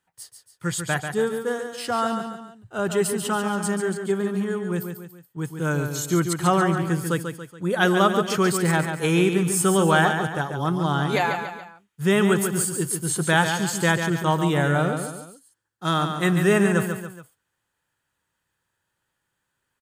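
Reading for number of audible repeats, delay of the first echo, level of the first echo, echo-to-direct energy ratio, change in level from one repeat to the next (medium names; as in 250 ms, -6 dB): 3, 141 ms, -7.0 dB, -6.0 dB, -7.0 dB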